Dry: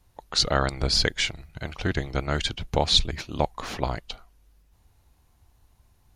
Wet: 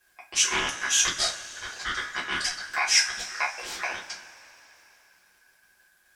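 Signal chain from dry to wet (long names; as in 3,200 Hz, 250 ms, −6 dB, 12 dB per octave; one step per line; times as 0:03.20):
ring modulation 1,600 Hz
bass and treble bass −6 dB, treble +10 dB
surface crackle 130 per second −48 dBFS
low-shelf EQ 160 Hz +3.5 dB
convolution reverb, pre-delay 3 ms, DRR −5.5 dB
highs frequency-modulated by the lows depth 0.18 ms
level −8 dB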